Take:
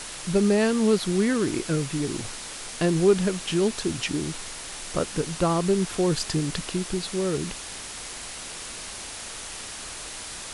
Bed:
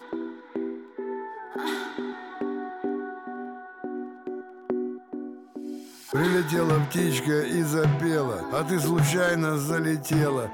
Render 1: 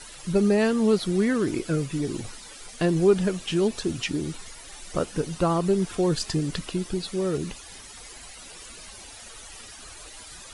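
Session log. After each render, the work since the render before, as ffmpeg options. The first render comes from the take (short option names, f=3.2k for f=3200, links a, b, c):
-af "afftdn=nr=13:nf=-38"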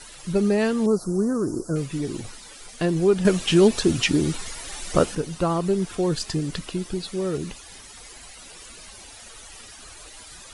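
-filter_complex "[0:a]asettb=1/sr,asplit=3[a][b][c];[a]atrim=end=0.864[d];[b]atrim=start=0.86:end=1.76,asetpts=PTS-STARTPTS,afade=t=in:d=0.004:c=qsin,afade=t=out:st=0.896:d=0.004:c=qsin,asuperstop=centerf=2700:order=8:qfactor=0.69[e];[c]atrim=start=1.756[f];[d][e]acrossfade=d=0.004:c1=hsin:c2=qsin[g];[g][f]acrossfade=d=0.004:c1=qsin:c2=hsin,asplit=3[h][i][j];[h]atrim=end=3.252[k];[i]atrim=start=3.248:end=5.152,asetpts=PTS-STARTPTS,volume=7.5dB[l];[j]atrim=start=5.148[m];[k][l]acrossfade=d=0.004:c1=hsin:c2=hsin[n];[n][m]acrossfade=d=0.004:c1=hsin:c2=hsin"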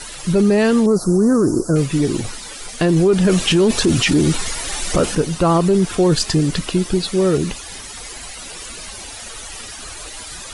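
-filter_complex "[0:a]asplit=2[a][b];[b]acontrast=83,volume=0.5dB[c];[a][c]amix=inputs=2:normalize=0,alimiter=limit=-7.5dB:level=0:latency=1:release=10"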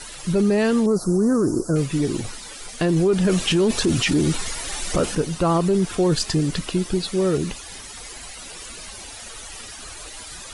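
-af "volume=-4.5dB"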